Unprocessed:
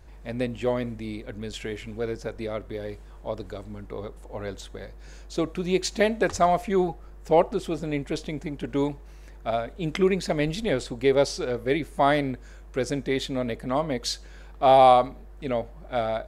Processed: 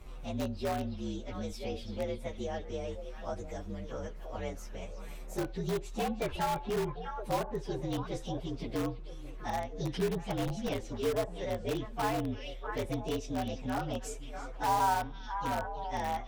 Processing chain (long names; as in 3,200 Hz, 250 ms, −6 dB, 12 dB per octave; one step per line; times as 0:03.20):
partials spread apart or drawn together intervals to 119%
on a send: echo through a band-pass that steps 323 ms, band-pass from 3,600 Hz, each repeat −1.4 octaves, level −7 dB
on the sum: treble cut that deepens with the level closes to 1,800 Hz, closed at −20 dBFS
low-shelf EQ 61 Hz +9.5 dB
in parallel at −7.5 dB: wrap-around overflow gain 20 dB
on the sum: multiband upward and downward compressor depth 40%
level −8.5 dB